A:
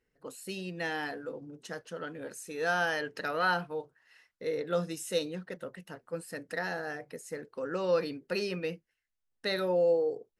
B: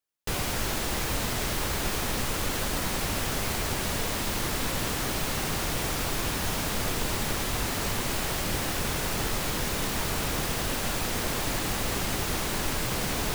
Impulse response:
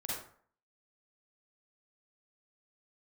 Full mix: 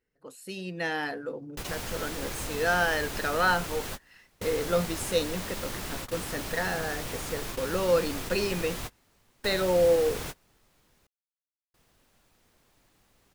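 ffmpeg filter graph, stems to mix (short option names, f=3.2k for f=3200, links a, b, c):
-filter_complex "[0:a]volume=-3dB,asplit=2[a][b];[1:a]adelay=1300,volume=-14dB,asplit=3[c][d][e];[c]atrim=end=11.07,asetpts=PTS-STARTPTS,afade=t=out:st=11.066:d=0.004:c=hsin[f];[d]atrim=start=11.07:end=11.74,asetpts=PTS-STARTPTS,volume=0[g];[e]atrim=start=11.74,asetpts=PTS-STARTPTS,afade=t=in:d=0.004:c=hsin[h];[f][g][h]concat=n=3:v=0:a=1[i];[b]apad=whole_len=645995[j];[i][j]sidechaingate=range=-30dB:threshold=-56dB:ratio=16:detection=peak[k];[a][k]amix=inputs=2:normalize=0,dynaudnorm=f=390:g=3:m=7dB"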